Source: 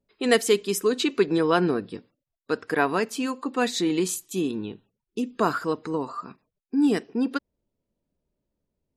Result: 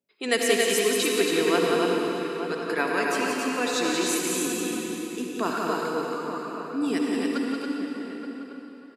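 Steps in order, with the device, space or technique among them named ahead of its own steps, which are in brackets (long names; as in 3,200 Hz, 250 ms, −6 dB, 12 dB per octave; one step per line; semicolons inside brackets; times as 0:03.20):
stadium PA (high-pass filter 210 Hz 12 dB per octave; parametric band 2,300 Hz +6 dB 0.79 octaves; loudspeakers that aren't time-aligned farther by 61 metres −5 dB, 95 metres −4 dB; convolution reverb RT60 3.4 s, pre-delay 55 ms, DRR 0.5 dB)
bass and treble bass +1 dB, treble +6 dB
slap from a distant wall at 150 metres, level −9 dB
level −6 dB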